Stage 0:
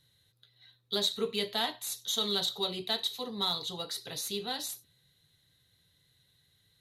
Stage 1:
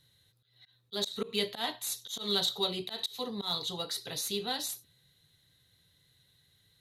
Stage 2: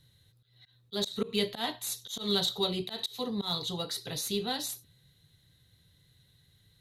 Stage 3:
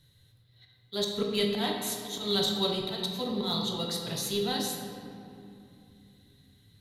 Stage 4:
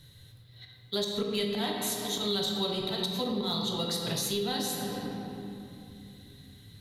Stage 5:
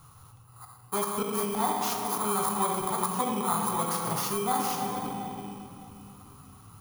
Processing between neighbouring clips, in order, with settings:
auto swell 0.127 s; gain +1.5 dB
low shelf 260 Hz +9 dB
reverb RT60 2.8 s, pre-delay 7 ms, DRR 1 dB
compressor 4:1, threshold -38 dBFS, peak gain reduction 12.5 dB; gain +8.5 dB
FFT order left unsorted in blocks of 16 samples; band shelf 1000 Hz +13 dB 1 oct

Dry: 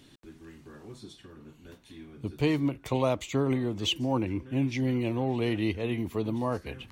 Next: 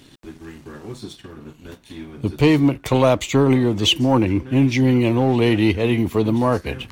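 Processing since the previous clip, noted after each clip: sample leveller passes 1; gain +8.5 dB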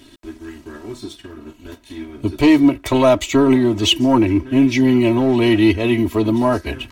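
comb 3.1 ms, depth 85%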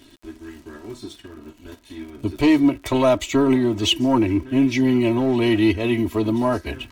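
crackle 77/s -35 dBFS; gain -4 dB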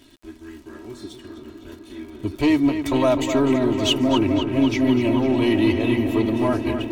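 darkening echo 0.253 s, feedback 84%, low-pass 4500 Hz, level -8 dB; gain -2 dB

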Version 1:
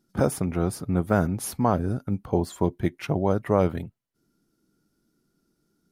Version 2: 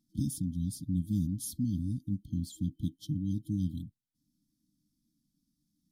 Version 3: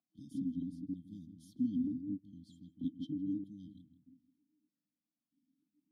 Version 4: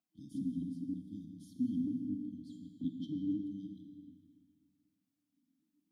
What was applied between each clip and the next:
FFT band-reject 320–3100 Hz; gain -6 dB
darkening echo 0.161 s, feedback 21%, low-pass 940 Hz, level -5 dB; vowel sequencer 3.2 Hz; gain +4.5 dB
reverb RT60 2.2 s, pre-delay 5 ms, DRR 5 dB

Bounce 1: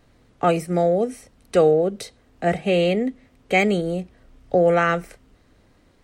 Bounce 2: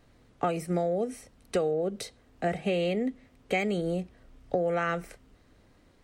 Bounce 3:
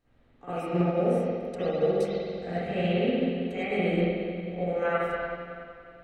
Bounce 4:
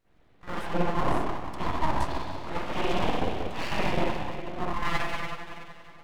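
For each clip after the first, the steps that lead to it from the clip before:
compressor 10:1, threshold -20 dBFS, peak gain reduction 9.5 dB; gain -3.5 dB
limiter -23 dBFS, peak gain reduction 10 dB; reverb RT60 3.3 s, pre-delay 45 ms, DRR -16 dB; upward expander 1.5:1, over -29 dBFS; gain -8 dB
full-wave rectifier; gain +2 dB

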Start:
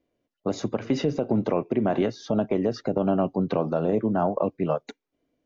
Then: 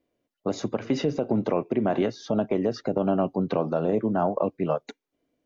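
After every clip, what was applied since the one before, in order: low shelf 130 Hz -4 dB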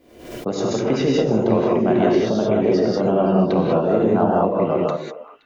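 on a send: delay with a stepping band-pass 0.13 s, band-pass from 170 Hz, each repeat 1.4 oct, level -7.5 dB; on the sum: non-linear reverb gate 0.22 s rising, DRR -3.5 dB; backwards sustainer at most 75 dB/s; gain +2 dB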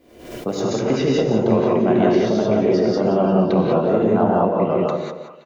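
feedback echo 0.175 s, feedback 28%, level -11 dB

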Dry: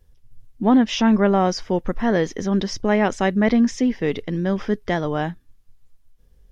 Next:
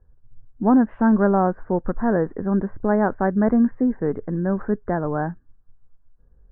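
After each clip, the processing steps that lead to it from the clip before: Chebyshev low-pass 1600 Hz, order 5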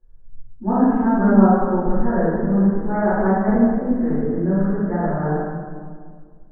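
reverb RT60 1.9 s, pre-delay 3 ms, DRR -15 dB; gain -13.5 dB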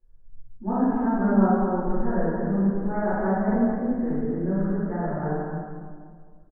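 echo 0.215 s -7.5 dB; gain -6.5 dB

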